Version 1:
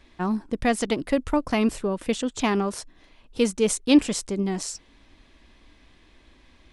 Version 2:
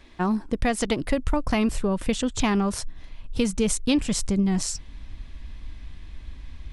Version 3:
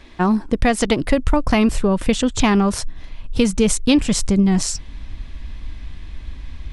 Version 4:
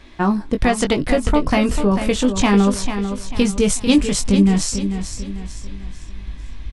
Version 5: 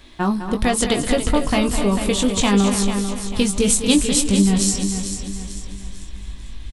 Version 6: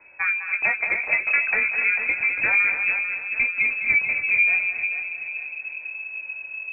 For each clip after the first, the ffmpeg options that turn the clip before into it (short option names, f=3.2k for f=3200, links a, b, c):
-af "asubboost=boost=7:cutoff=140,acompressor=threshold=-22dB:ratio=6,volume=3.5dB"
-af "highshelf=f=10k:g=-5,volume=7dB"
-filter_complex "[0:a]asplit=2[a][b];[b]adelay=20,volume=-7dB[c];[a][c]amix=inputs=2:normalize=0,asplit=2[d][e];[e]aecho=0:1:444|888|1332|1776:0.355|0.142|0.0568|0.0227[f];[d][f]amix=inputs=2:normalize=0,volume=-1dB"
-af "aecho=1:1:207|282.8:0.316|0.282,aexciter=amount=2.5:drive=1.7:freq=3.1k,volume=-2.5dB"
-af "lowpass=f=2.2k:t=q:w=0.5098,lowpass=f=2.2k:t=q:w=0.6013,lowpass=f=2.2k:t=q:w=0.9,lowpass=f=2.2k:t=q:w=2.563,afreqshift=-2600,volume=-4dB"